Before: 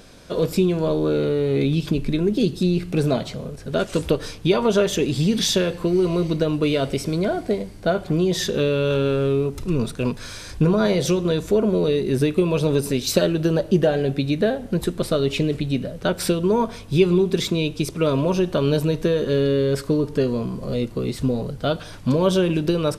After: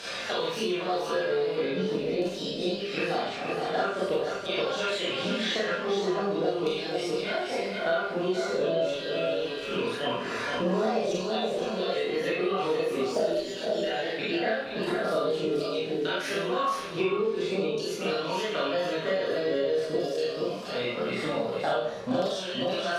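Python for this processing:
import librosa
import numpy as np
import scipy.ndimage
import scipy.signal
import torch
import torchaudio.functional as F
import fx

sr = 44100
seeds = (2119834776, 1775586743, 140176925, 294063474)

y = fx.pitch_trill(x, sr, semitones=2.5, every_ms=157)
y = fx.chorus_voices(y, sr, voices=4, hz=0.11, base_ms=26, depth_ms=1.7, mix_pct=45)
y = fx.filter_lfo_bandpass(y, sr, shape='saw_down', hz=0.45, low_hz=540.0, high_hz=5000.0, q=1.1)
y = y + 10.0 ** (-8.5 / 20.0) * np.pad(y, (int(472 * sr / 1000.0), 0))[:len(y)]
y = fx.rev_schroeder(y, sr, rt60_s=0.49, comb_ms=32, drr_db=-7.5)
y = fx.band_squash(y, sr, depth_pct=100)
y = F.gain(torch.from_numpy(y), -5.0).numpy()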